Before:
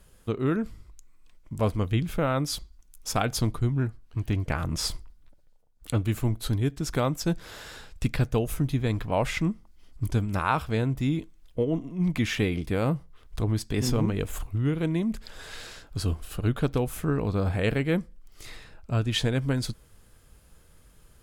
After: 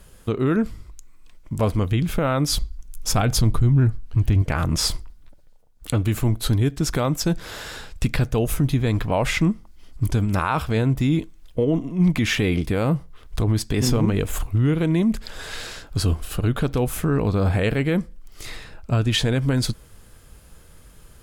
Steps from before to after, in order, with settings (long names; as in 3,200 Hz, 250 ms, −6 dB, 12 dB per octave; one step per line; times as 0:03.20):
0:02.48–0:04.42: low-shelf EQ 140 Hz +11 dB
brickwall limiter −18.5 dBFS, peak gain reduction 8.5 dB
level +8 dB